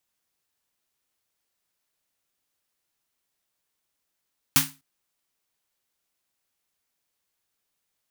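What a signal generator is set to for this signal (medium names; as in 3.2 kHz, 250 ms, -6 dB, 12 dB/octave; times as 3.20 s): snare drum length 0.25 s, tones 150 Hz, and 270 Hz, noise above 890 Hz, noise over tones 10 dB, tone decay 0.30 s, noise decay 0.26 s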